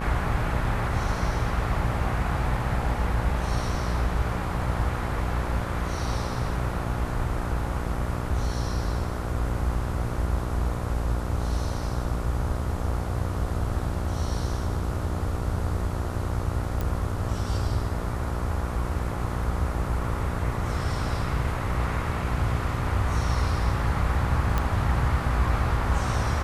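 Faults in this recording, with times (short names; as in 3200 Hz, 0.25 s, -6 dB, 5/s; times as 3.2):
buzz 60 Hz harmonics 24 -31 dBFS
16.81 pop
24.58 pop -12 dBFS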